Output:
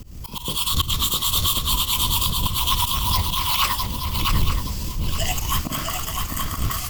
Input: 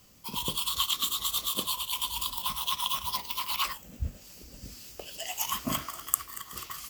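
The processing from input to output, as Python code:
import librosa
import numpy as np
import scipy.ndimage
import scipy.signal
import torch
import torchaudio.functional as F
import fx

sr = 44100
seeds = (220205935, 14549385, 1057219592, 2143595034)

p1 = fx.dmg_wind(x, sr, seeds[0], corner_hz=83.0, level_db=-36.0)
p2 = fx.low_shelf(p1, sr, hz=250.0, db=3.5)
p3 = fx.rider(p2, sr, range_db=3, speed_s=0.5)
p4 = p2 + (p3 * librosa.db_to_amplitude(-0.5))
p5 = fx.auto_swell(p4, sr, attack_ms=140.0)
p6 = p5 + fx.echo_swing(p5, sr, ms=873, ratio=3, feedback_pct=31, wet_db=-5.0, dry=0)
p7 = fx.transient(p6, sr, attack_db=-6, sustain_db=-1)
y = p7 * librosa.db_to_amplitude(4.5)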